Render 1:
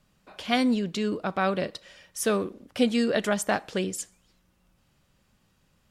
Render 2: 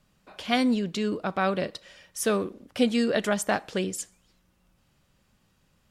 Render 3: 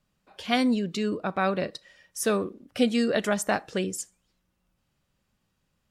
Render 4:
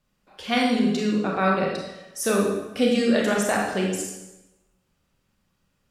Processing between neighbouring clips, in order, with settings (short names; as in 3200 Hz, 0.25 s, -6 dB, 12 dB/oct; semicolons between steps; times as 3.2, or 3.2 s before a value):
nothing audible
spectral noise reduction 8 dB
reverb RT60 1.0 s, pre-delay 23 ms, DRR -2 dB